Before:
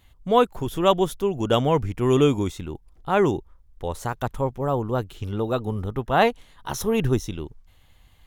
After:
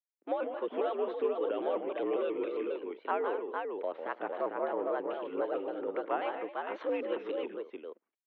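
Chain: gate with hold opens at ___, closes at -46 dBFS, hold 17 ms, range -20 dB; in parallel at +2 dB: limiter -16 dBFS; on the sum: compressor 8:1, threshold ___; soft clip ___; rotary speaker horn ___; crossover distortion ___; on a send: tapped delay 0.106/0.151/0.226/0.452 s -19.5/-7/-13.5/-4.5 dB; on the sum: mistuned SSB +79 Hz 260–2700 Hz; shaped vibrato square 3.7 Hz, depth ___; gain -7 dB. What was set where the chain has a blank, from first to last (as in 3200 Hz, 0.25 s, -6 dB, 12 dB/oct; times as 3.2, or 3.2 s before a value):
-43 dBFS, -18 dBFS, -11.5 dBFS, 6 Hz, -58.5 dBFS, 100 cents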